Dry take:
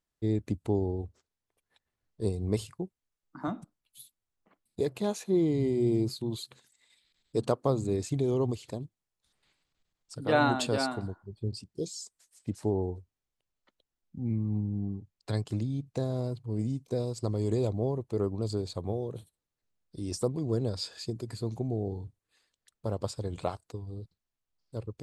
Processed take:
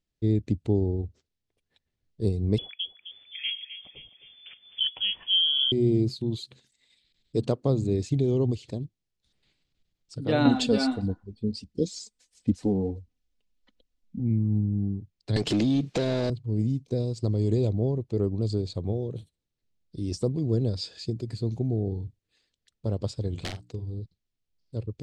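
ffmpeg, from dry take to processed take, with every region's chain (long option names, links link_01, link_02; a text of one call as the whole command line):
ffmpeg -i in.wav -filter_complex "[0:a]asettb=1/sr,asplit=3[link_01][link_02][link_03];[link_01]atrim=end=2.584[link_04];[link_02]atrim=start=2.58:end=5.72,asetpts=PTS-STARTPTS,afade=type=in:duration=0.004:curve=qsin,afade=type=out:start_time=3.136:duration=0.004:curve=qsin,acompressor=mode=upward:threshold=-32dB:ratio=2.5:attack=3.2:release=140:knee=2.83:detection=peak,asplit=2[link_05][link_06];[link_06]adelay=260,lowpass=frequency=2600:poles=1,volume=-11dB,asplit=2[link_07][link_08];[link_08]adelay=260,lowpass=frequency=2600:poles=1,volume=0.51,asplit=2[link_09][link_10];[link_10]adelay=260,lowpass=frequency=2600:poles=1,volume=0.51,asplit=2[link_11][link_12];[link_12]adelay=260,lowpass=frequency=2600:poles=1,volume=0.51,asplit=2[link_13][link_14];[link_14]adelay=260,lowpass=frequency=2600:poles=1,volume=0.51[link_15];[link_05][link_07][link_09][link_11][link_13][link_15]amix=inputs=6:normalize=0,atrim=end_sample=138474,lowpass=frequency=3000:width_type=q:width=0.5098,lowpass=frequency=3000:width_type=q:width=0.6013,lowpass=frequency=3000:width_type=q:width=0.9,lowpass=frequency=3000:width_type=q:width=2.563,afreqshift=-3500[link_16];[link_03]atrim=start=5.716[link_17];[link_04][link_16]acrossfade=duration=0.004:curve1=hsin:curve2=qsin[link_18];[link_18][link_17]acrossfade=duration=0.004:curve1=qsin:curve2=hsin,asettb=1/sr,asplit=3[link_19][link_20][link_21];[link_19]atrim=end=10.454[link_22];[link_20]atrim=start=10.45:end=14.2,asetpts=PTS-STARTPTS,afade=type=in:duration=0.004:curve=qsin,afade=type=out:start_time=3.746:duration=0.004:curve=qsin,aphaser=in_gain=1:out_gain=1:delay=4.9:decay=0.45:speed=1.5:type=sinusoidal,aecho=1:1:4:0.59,atrim=end_sample=165375[link_23];[link_21]atrim=start=14.196[link_24];[link_22][link_23]acrossfade=duration=0.004:curve1=hsin:curve2=qsin[link_25];[link_25][link_24]acrossfade=duration=0.004:curve1=qsin:curve2=hsin,asettb=1/sr,asplit=3[link_26][link_27][link_28];[link_26]atrim=end=15.364[link_29];[link_27]atrim=start=15.36:end=16.3,asetpts=PTS-STARTPTS,afade=type=in:duration=0.004:curve=qsin,afade=type=out:start_time=0.936:duration=0.004:curve=qsin,equalizer=frequency=90:width_type=o:width=1.3:gain=-11,acompressor=threshold=-38dB:ratio=10:attack=3.2:release=140:knee=1:detection=peak,asplit=2[link_30][link_31];[link_31]highpass=frequency=720:poles=1,volume=36dB,asoftclip=type=tanh:threshold=-17.5dB[link_32];[link_30][link_32]amix=inputs=2:normalize=0,lowpass=frequency=4200:poles=1,volume=-6dB[link_33];[link_28]atrim=start=16.296[link_34];[link_29][link_33]acrossfade=duration=0.004:curve1=hsin:curve2=qsin[link_35];[link_35][link_34]acrossfade=duration=0.004:curve1=qsin:curve2=hsin,asettb=1/sr,asplit=3[link_36][link_37][link_38];[link_36]atrim=end=23.314[link_39];[link_37]atrim=start=23.31:end=23.94,asetpts=PTS-STARTPTS,afade=type=in:duration=0.004:curve=qsin,afade=type=out:start_time=0.626:duration=0.004:curve=qsin,aeval=exprs='(mod(20*val(0)+1,2)-1)/20':channel_layout=same,bandreject=frequency=60:width_type=h:width=6,bandreject=frequency=120:width_type=h:width=6,bandreject=frequency=180:width_type=h:width=6,bandreject=frequency=240:width_type=h:width=6,bandreject=frequency=300:width_type=h:width=6,asplit=2[link_40][link_41];[link_41]adelay=43,volume=-11dB[link_42];[link_40][link_42]amix=inputs=2:normalize=0,atrim=end_sample=27783[link_43];[link_38]atrim=start=23.936[link_44];[link_39][link_43]acrossfade=duration=0.004:curve1=hsin:curve2=qsin[link_45];[link_45][link_44]acrossfade=duration=0.004:curve1=qsin:curve2=hsin,lowpass=4700,equalizer=frequency=1100:width=0.66:gain=-13.5,volume=6.5dB" out.wav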